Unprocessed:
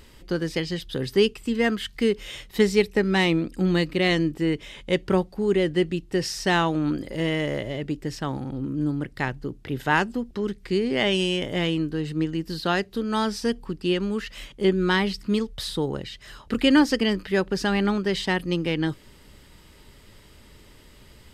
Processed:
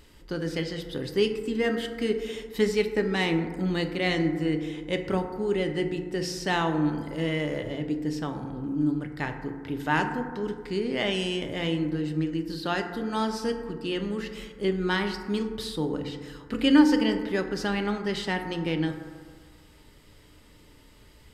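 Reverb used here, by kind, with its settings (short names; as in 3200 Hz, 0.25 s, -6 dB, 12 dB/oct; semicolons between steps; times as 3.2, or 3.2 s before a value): FDN reverb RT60 1.7 s, low-frequency decay 1×, high-frequency decay 0.3×, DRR 5 dB; gain -5 dB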